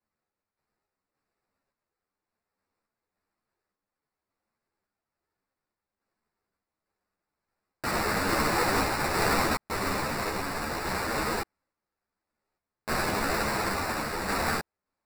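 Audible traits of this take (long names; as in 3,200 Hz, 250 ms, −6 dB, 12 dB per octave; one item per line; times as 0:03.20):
sample-and-hold tremolo
aliases and images of a low sample rate 3,200 Hz, jitter 0%
a shimmering, thickened sound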